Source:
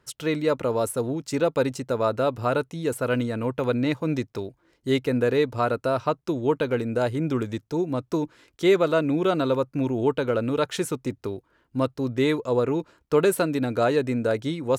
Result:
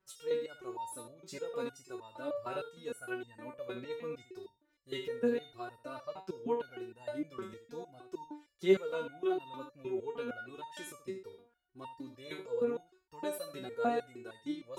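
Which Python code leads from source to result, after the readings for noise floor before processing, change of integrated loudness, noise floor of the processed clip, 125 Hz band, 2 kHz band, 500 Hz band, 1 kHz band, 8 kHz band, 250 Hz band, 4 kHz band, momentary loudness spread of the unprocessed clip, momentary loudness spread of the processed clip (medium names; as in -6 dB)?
-69 dBFS, -14.0 dB, -75 dBFS, -24.5 dB, -14.0 dB, -13.0 dB, -13.0 dB, under -10 dB, -16.0 dB, -13.5 dB, 7 LU, 14 LU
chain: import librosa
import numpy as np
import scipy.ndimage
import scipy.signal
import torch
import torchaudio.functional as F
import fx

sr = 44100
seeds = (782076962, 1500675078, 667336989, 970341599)

y = x + 10.0 ** (-10.5 / 20.0) * np.pad(x, (int(76 * sr / 1000.0), 0))[:len(x)]
y = fx.resonator_held(y, sr, hz=6.5, low_hz=190.0, high_hz=910.0)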